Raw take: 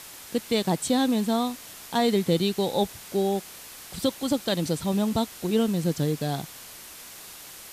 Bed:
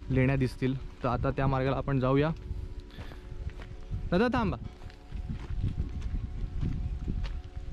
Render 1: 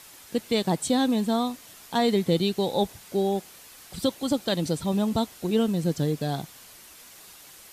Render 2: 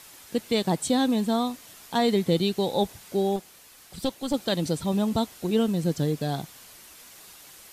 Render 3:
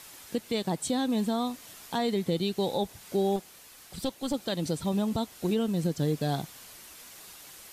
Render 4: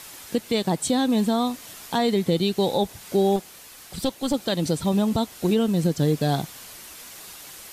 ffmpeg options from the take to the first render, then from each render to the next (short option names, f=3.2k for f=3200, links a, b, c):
-af "afftdn=nr=6:nf=-44"
-filter_complex "[0:a]asettb=1/sr,asplit=3[a][b][c];[a]atrim=end=3.364[d];[b]atrim=start=3.36:end=4.34,asetpts=PTS-STARTPTS,afade=t=in:d=0.004:c=qsin,afade=t=out:st=0.976:d=0.004:c=qsin,aeval=exprs='(tanh(7.08*val(0)+0.65)-tanh(0.65))/7.08':c=same[e];[c]atrim=start=4.336[f];[d][e]acrossfade=d=0.004:c1=hsin:c2=qsin[g];[g][f]acrossfade=d=0.004:c1=qsin:c2=hsin"
-af "alimiter=limit=-18.5dB:level=0:latency=1:release=305"
-af "volume=6.5dB"